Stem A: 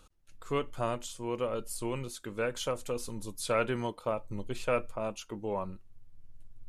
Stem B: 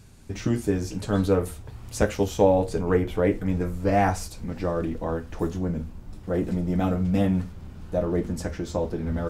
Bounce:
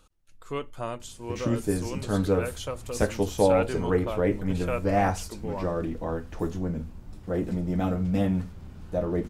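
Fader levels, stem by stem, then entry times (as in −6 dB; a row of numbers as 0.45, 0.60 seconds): −1.0, −2.5 decibels; 0.00, 1.00 seconds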